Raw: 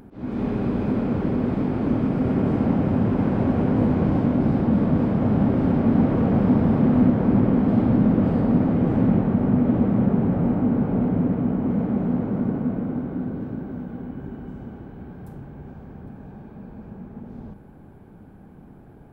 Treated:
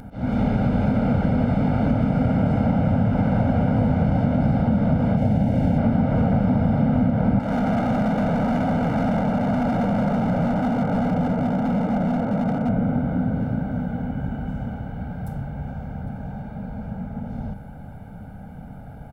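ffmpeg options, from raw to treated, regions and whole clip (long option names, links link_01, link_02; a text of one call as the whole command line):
ffmpeg -i in.wav -filter_complex "[0:a]asettb=1/sr,asplit=3[link_01][link_02][link_03];[link_01]atrim=end=5.174[link_04];[link_02]atrim=start=5.17:end=5.78,asetpts=PTS-STARTPTS,afade=type=in:duration=0.004:curve=qsin,afade=type=out:start_time=0.606:duration=0.004:curve=qsin,equalizer=frequency=1200:width_type=o:width=0.44:gain=-14,aeval=exprs='sgn(val(0))*max(abs(val(0))-0.00473,0)':channel_layout=same[link_05];[link_03]atrim=start=5.776[link_06];[link_04][link_05]acrossfade=duration=0.004:curve1=hsin:curve2=qsin[link_07];[link_07][link_06]acrossfade=duration=0.004:curve1=qsin:curve2=hsin,asettb=1/sr,asplit=3[link_08][link_09][link_10];[link_08]atrim=end=7.394[link_11];[link_09]atrim=start=7.39:end=12.69,asetpts=PTS-STARTPTS,afade=type=in:duration=0.004:curve=qsin,afade=type=out:start_time=5.296:duration=0.004:curve=qsin,highpass=180,lowpass=2800,asoftclip=type=hard:threshold=-24dB[link_12];[link_10]atrim=start=12.686[link_13];[link_11][link_12]acrossfade=duration=0.004:curve1=hsin:curve2=qsin[link_14];[link_14][link_13]acrossfade=duration=0.004:curve1=qsin:curve2=hsin,aecho=1:1:1.4:0.98,acompressor=threshold=-21dB:ratio=6,volume=5dB" out.wav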